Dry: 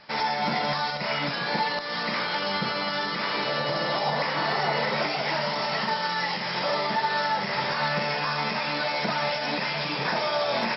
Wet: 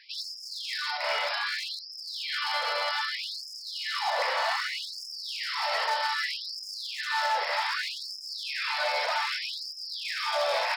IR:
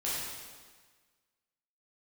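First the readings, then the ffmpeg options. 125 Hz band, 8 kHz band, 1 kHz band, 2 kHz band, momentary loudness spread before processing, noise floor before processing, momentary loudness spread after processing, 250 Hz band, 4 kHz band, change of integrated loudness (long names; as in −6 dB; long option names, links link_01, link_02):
below −40 dB, can't be measured, −5.0 dB, −3.0 dB, 2 LU, −30 dBFS, 9 LU, below −40 dB, −1.0 dB, −3.5 dB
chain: -af "volume=22dB,asoftclip=hard,volume=-22dB,afftfilt=real='re*gte(b*sr/1024,430*pow(4900/430,0.5+0.5*sin(2*PI*0.64*pts/sr)))':imag='im*gte(b*sr/1024,430*pow(4900/430,0.5+0.5*sin(2*PI*0.64*pts/sr)))':win_size=1024:overlap=0.75"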